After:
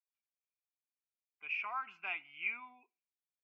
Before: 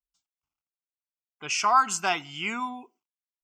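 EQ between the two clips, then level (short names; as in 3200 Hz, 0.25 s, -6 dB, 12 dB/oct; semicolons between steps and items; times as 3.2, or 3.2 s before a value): HPF 620 Hz 6 dB/oct; ladder low-pass 2500 Hz, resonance 85%; air absorption 110 m; -7.0 dB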